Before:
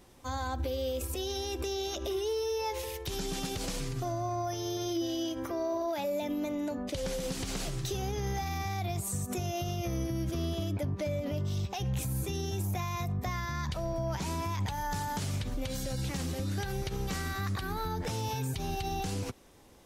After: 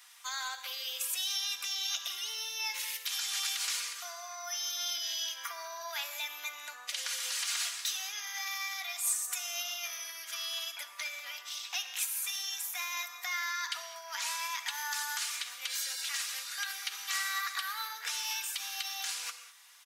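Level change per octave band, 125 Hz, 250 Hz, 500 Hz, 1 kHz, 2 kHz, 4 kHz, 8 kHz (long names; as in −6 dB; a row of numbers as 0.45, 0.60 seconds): below −40 dB, below −40 dB, −20.5 dB, −5.0 dB, +6.5 dB, +7.5 dB, +7.0 dB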